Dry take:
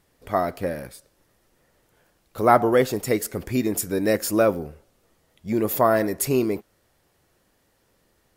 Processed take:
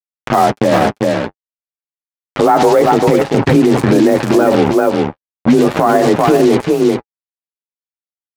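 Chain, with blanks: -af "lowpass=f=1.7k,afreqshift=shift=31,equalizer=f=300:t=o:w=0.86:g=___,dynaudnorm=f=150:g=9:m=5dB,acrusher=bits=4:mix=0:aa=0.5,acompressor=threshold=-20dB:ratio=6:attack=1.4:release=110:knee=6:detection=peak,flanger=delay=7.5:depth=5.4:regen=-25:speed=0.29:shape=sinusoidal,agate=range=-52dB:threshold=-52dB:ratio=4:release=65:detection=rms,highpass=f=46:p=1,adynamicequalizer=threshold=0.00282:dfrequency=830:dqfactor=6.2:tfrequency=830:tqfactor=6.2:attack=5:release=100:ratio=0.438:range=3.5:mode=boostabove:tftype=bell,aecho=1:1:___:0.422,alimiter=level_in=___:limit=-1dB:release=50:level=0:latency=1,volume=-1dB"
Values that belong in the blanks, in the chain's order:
3, 393, 25.5dB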